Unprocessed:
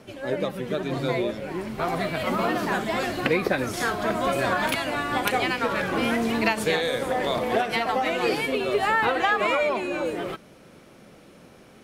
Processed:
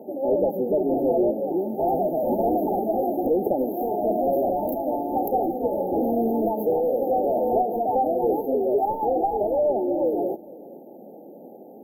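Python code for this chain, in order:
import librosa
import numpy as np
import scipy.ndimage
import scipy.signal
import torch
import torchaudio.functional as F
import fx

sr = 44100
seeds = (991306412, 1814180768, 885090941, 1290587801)

p1 = scipy.signal.sosfilt(scipy.signal.butter(4, 240.0, 'highpass', fs=sr, output='sos'), x)
p2 = fx.rider(p1, sr, range_db=10, speed_s=2.0)
p3 = p1 + (p2 * librosa.db_to_amplitude(2.0))
p4 = 10.0 ** (-15.0 / 20.0) * np.tanh(p3 / 10.0 ** (-15.0 / 20.0))
p5 = fx.brickwall_bandstop(p4, sr, low_hz=890.0, high_hz=12000.0)
y = p5 + fx.echo_single(p5, sr, ms=460, db=-22.5, dry=0)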